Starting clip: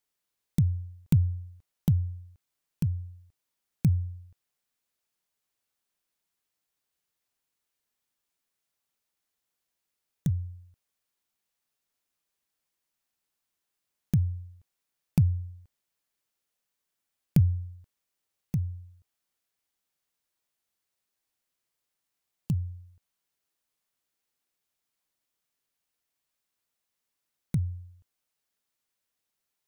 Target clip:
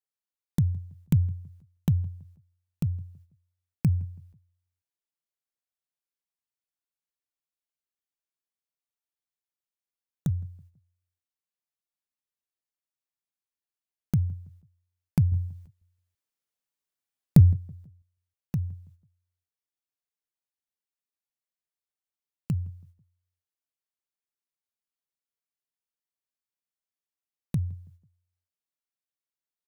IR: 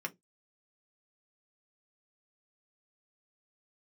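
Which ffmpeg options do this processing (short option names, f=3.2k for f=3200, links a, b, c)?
-filter_complex "[0:a]agate=range=-14dB:threshold=-52dB:ratio=16:detection=peak,asettb=1/sr,asplit=3[a][b][c];[a]atrim=end=15.324[d];[b]atrim=start=15.32:end=17.53,asetpts=PTS-STARTPTS,afade=t=in:d=0.004:c=qsin,afade=t=out:st=2.206:d=0.004:c=qsin,acontrast=73[e];[c]atrim=start=17.526[f];[d][e]acrossfade=d=0.004:c1=hsin:c2=qsin[g];[g][f]acrossfade=d=0.004:c1=qsin:c2=hsin,asplit=2[h][i];[i]adelay=164,lowpass=f=1.2k:p=1,volume=-23dB,asplit=2[j][k];[k]adelay=164,lowpass=f=1.2k:p=1,volume=0.41,asplit=2[l][m];[m]adelay=164,lowpass=f=1.2k:p=1,volume=0.41[n];[j][l][n]amix=inputs=3:normalize=0[o];[h][o]amix=inputs=2:normalize=0"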